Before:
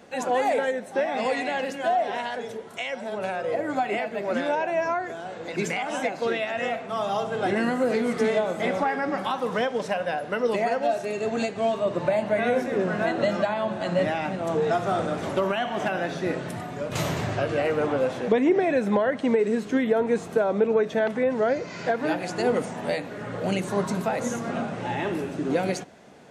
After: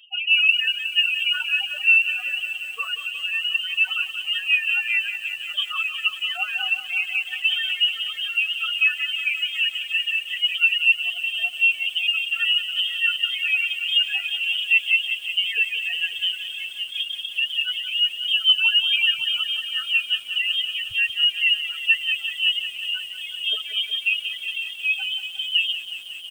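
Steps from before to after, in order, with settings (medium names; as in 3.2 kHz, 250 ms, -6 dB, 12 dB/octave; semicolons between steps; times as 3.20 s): delay 556 ms -15.5 dB; reverb removal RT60 0.91 s; loudest bins only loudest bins 8; reverb removal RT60 0.68 s; peaking EQ 820 Hz +9.5 dB 0.4 oct; comb 5.7 ms, depth 93%; frequency inversion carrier 3.4 kHz; bit-crushed delay 182 ms, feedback 80%, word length 7-bit, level -11 dB; trim -1 dB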